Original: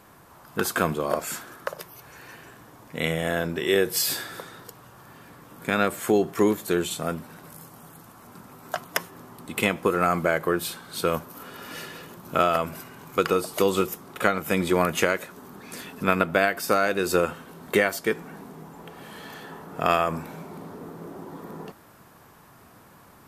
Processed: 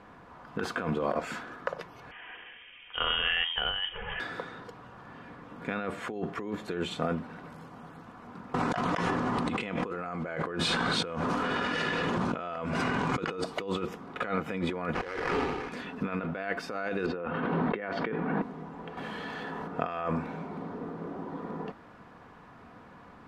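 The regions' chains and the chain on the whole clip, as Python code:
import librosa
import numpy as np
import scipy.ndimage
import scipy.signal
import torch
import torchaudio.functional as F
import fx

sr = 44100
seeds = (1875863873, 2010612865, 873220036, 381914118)

y = fx.chain(x, sr, fx.highpass(hz=160.0, slope=12),
    fx.freq_invert(carrier_hz=3400), at=(2.11, 4.2))
y = fx.chain(y, sr, fx.lowpass(hz=9200.0, slope=24),
    fx.high_shelf(hz=6600.0, db=7.5),
    fx.env_flatten(amount_pct=70), at=(8.54, 13.44))
y = fx.chain(y, sr, fx.comb(ms=2.4, depth=0.86),
    fx.sample_hold(seeds[0], rate_hz=3600.0, jitter_pct=20),
    fx.sustainer(db_per_s=38.0), at=(14.94, 15.69))
y = fx.chain(y, sr, fx.highpass(hz=110.0, slope=12),
    fx.air_absorb(metres=340.0),
    fx.sustainer(db_per_s=21.0), at=(17.06, 18.42))
y = fx.chain(y, sr, fx.high_shelf(hz=4600.0, db=6.5),
    fx.env_flatten(amount_pct=100), at=(18.97, 19.68))
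y = scipy.signal.sosfilt(scipy.signal.butter(2, 2800.0, 'lowpass', fs=sr, output='sos'), y)
y = y + 0.3 * np.pad(y, (int(4.1 * sr / 1000.0), 0))[:len(y)]
y = fx.over_compress(y, sr, threshold_db=-28.0, ratio=-1.0)
y = y * 10.0 ** (-3.5 / 20.0)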